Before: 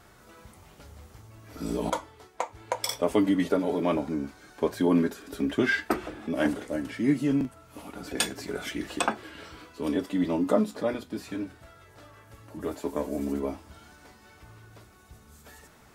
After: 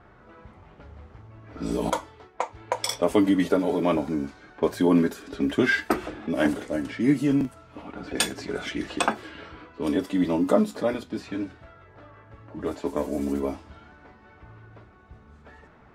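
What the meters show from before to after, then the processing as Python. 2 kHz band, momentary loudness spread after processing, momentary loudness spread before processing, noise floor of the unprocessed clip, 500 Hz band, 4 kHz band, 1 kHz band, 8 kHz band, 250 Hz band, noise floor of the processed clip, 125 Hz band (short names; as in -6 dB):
+3.0 dB, 15 LU, 15 LU, -55 dBFS, +3.0 dB, +3.0 dB, +3.0 dB, +2.0 dB, +3.0 dB, -53 dBFS, +3.0 dB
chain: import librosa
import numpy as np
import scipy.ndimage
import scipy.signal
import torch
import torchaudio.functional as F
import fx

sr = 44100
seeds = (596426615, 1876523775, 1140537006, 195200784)

y = fx.env_lowpass(x, sr, base_hz=1700.0, full_db=-25.5)
y = F.gain(torch.from_numpy(y), 3.0).numpy()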